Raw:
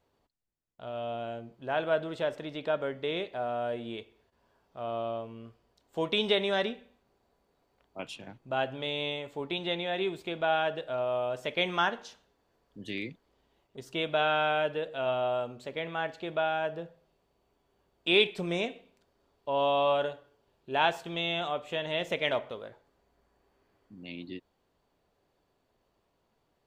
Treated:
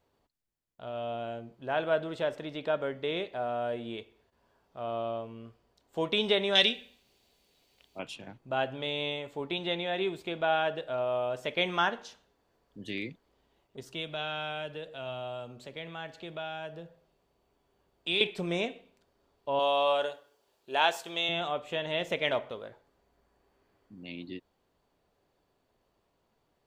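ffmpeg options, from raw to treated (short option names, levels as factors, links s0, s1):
-filter_complex "[0:a]asettb=1/sr,asplit=3[s0][s1][s2];[s0]atrim=end=6.554[s3];[s1]atrim=start=6.55:end=7.99,asetpts=PTS-STARTPTS,afade=t=in:d=0.004:c=qsin,afade=t=out:st=1.436:d=0.004:c=qsin,highshelf=f=2000:t=q:w=1.5:g=12.5[s4];[s2]atrim=start=7.986[s5];[s3][s4]acrossfade=d=0.004:c1=hsin:c2=qsin[s6];[s6][s5]acrossfade=d=0.004:c1=qsin:c2=hsin,asettb=1/sr,asplit=3[s7][s8][s9];[s7]atrim=end=13.834[s10];[s8]atrim=start=13.83:end=18.21,asetpts=PTS-STARTPTS,afade=t=in:d=0.004:c=qsin,afade=t=out:st=4.376:d=0.004:c=qsin,acrossover=split=170|3000[s11][s12][s13];[s12]acompressor=threshold=0.00224:ratio=1.5:attack=3.2:release=140:knee=2.83:detection=peak[s14];[s11][s14][s13]amix=inputs=3:normalize=0[s15];[s9]atrim=start=18.206[s16];[s10][s15]acrossfade=d=0.004:c1=hsin:c2=qsin[s17];[s17][s16]acrossfade=d=0.004:c1=qsin:c2=hsin,asettb=1/sr,asplit=3[s18][s19][s20];[s18]atrim=end=19.594[s21];[s19]atrim=start=19.59:end=21.29,asetpts=PTS-STARTPTS,afade=t=in:d=0.004:c=qsin,afade=t=out:st=1.696:d=0.004:c=qsin,bass=f=250:g=-14,treble=f=4000:g=9[s22];[s20]atrim=start=21.286[s23];[s21][s22]acrossfade=d=0.004:c1=hsin:c2=qsin[s24];[s24][s23]acrossfade=d=0.004:c1=qsin:c2=hsin"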